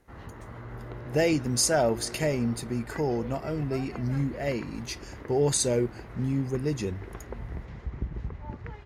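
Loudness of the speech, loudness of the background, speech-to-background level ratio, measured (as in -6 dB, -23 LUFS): -28.0 LUFS, -41.5 LUFS, 13.5 dB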